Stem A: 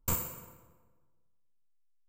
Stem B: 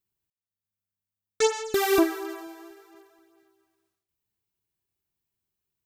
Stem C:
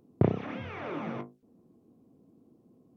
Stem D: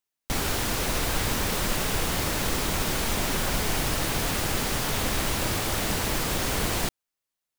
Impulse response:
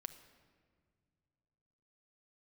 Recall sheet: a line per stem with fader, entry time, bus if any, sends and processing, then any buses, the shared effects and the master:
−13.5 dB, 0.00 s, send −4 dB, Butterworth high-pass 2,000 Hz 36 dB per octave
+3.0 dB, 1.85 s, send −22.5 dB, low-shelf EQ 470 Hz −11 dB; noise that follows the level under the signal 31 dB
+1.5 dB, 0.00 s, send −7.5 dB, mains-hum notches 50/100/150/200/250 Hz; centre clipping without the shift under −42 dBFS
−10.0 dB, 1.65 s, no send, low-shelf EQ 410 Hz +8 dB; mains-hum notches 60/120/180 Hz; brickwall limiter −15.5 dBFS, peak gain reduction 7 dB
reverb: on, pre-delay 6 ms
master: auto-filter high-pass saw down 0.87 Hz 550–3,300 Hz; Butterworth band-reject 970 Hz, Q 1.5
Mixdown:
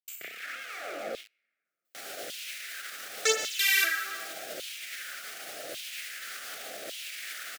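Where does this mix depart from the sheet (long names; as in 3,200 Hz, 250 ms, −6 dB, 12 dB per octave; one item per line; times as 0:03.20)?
stem A: missing Butterworth high-pass 2,000 Hz 36 dB per octave
stem C: send −7.5 dB → −14 dB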